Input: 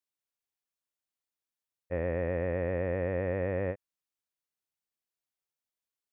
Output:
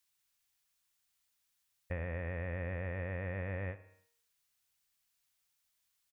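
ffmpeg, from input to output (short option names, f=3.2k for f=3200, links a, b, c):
-filter_complex "[0:a]equalizer=f=390:w=0.57:g=-14.5,bandreject=f=155.7:t=h:w=4,bandreject=f=311.4:t=h:w=4,bandreject=f=467.1:t=h:w=4,bandreject=f=622.8:t=h:w=4,bandreject=f=778.5:t=h:w=4,bandreject=f=934.2:t=h:w=4,bandreject=f=1.0899k:t=h:w=4,bandreject=f=1.2456k:t=h:w=4,bandreject=f=1.4013k:t=h:w=4,bandreject=f=1.557k:t=h:w=4,bandreject=f=1.7127k:t=h:w=4,bandreject=f=1.8684k:t=h:w=4,bandreject=f=2.0241k:t=h:w=4,bandreject=f=2.1798k:t=h:w=4,bandreject=f=2.3355k:t=h:w=4,bandreject=f=2.4912k:t=h:w=4,bandreject=f=2.6469k:t=h:w=4,bandreject=f=2.8026k:t=h:w=4,bandreject=f=2.9583k:t=h:w=4,bandreject=f=3.114k:t=h:w=4,bandreject=f=3.2697k:t=h:w=4,bandreject=f=3.4254k:t=h:w=4,bandreject=f=3.5811k:t=h:w=4,bandreject=f=3.7368k:t=h:w=4,bandreject=f=3.8925k:t=h:w=4,bandreject=f=4.0482k:t=h:w=4,bandreject=f=4.2039k:t=h:w=4,bandreject=f=4.3596k:t=h:w=4,bandreject=f=4.5153k:t=h:w=4,bandreject=f=4.671k:t=h:w=4,bandreject=f=4.8267k:t=h:w=4,bandreject=f=4.9824k:t=h:w=4,bandreject=f=5.1381k:t=h:w=4,bandreject=f=5.2938k:t=h:w=4,bandreject=f=5.4495k:t=h:w=4,bandreject=f=5.6052k:t=h:w=4,acompressor=threshold=-50dB:ratio=6,asplit=2[a][b];[b]adelay=62,lowpass=f=2k:p=1,volume=-16dB,asplit=2[c][d];[d]adelay=62,lowpass=f=2k:p=1,volume=0.55,asplit=2[e][f];[f]adelay=62,lowpass=f=2k:p=1,volume=0.55,asplit=2[g][h];[h]adelay=62,lowpass=f=2k:p=1,volume=0.55,asplit=2[i][j];[j]adelay=62,lowpass=f=2k:p=1,volume=0.55[k];[a][c][e][g][i][k]amix=inputs=6:normalize=0,volume=13dB"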